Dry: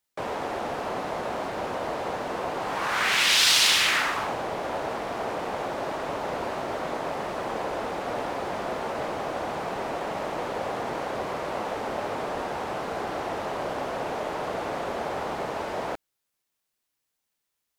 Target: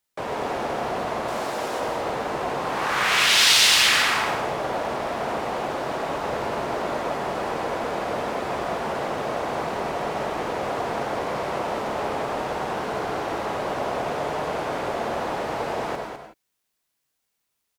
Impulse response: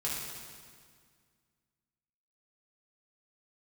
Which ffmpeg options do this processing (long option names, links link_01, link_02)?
-filter_complex "[0:a]asettb=1/sr,asplit=3[link_01][link_02][link_03];[link_01]atrim=end=1.284[link_04];[link_02]atrim=start=1.28:end=1.8,asetpts=PTS-STARTPTS,afade=type=in:duration=0.004:curve=qsin,afade=type=out:start_time=0.516:duration=0.004:curve=qsin,bass=frequency=250:gain=-7,treble=frequency=4000:gain=8[link_05];[link_03]atrim=start=1.796[link_06];[link_04][link_05]acrossfade=duration=0.004:curve1=hsin:curve2=qsin[link_07];[link_07][link_06]acrossfade=duration=0.004:curve1=qsin:curve2=hsin,aecho=1:1:205:0.447,asplit=2[link_08][link_09];[1:a]atrim=start_sample=2205,atrim=end_sample=3969,adelay=94[link_10];[link_09][link_10]afir=irnorm=-1:irlink=0,volume=-7.5dB[link_11];[link_08][link_11]amix=inputs=2:normalize=0,volume=1.5dB"